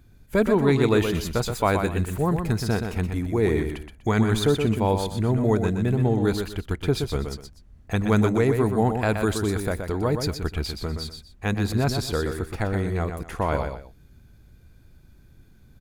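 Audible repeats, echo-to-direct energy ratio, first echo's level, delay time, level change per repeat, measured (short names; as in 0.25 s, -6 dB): 2, -6.0 dB, -6.5 dB, 0.123 s, -11.5 dB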